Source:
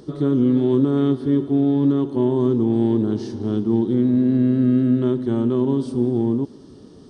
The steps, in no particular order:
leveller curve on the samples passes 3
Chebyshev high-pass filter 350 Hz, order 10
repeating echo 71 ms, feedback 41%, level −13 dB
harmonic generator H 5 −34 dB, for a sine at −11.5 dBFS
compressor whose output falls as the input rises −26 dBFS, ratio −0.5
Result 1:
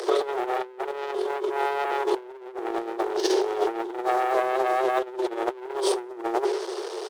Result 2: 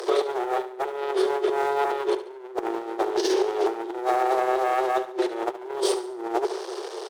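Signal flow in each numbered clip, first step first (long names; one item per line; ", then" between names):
harmonic generator, then repeating echo, then leveller curve on the samples, then Chebyshev high-pass filter, then compressor whose output falls as the input rises
leveller curve on the samples, then Chebyshev high-pass filter, then compressor whose output falls as the input rises, then harmonic generator, then repeating echo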